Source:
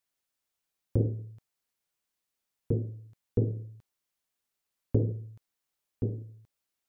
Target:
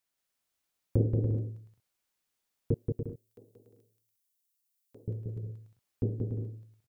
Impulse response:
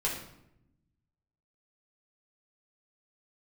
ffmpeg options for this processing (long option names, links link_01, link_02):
-filter_complex "[0:a]asettb=1/sr,asplit=3[link_01][link_02][link_03];[link_01]atrim=end=2.744[link_04];[link_02]atrim=start=2.74:end=5.08,asetpts=PTS-STARTPTS,afade=type=in:duration=0.004:curve=qsin,afade=type=out:start_time=2.336:duration=0.004:curve=qsin,aderivative[link_05];[link_03]atrim=start=5.076[link_06];[link_04][link_05]acrossfade=duration=0.004:curve1=hsin:curve2=qsin[link_07];[link_07][link_06]acrossfade=duration=0.004:curve1=qsin:curve2=hsin,aecho=1:1:180|288|352.8|391.7|415:0.631|0.398|0.251|0.158|0.1"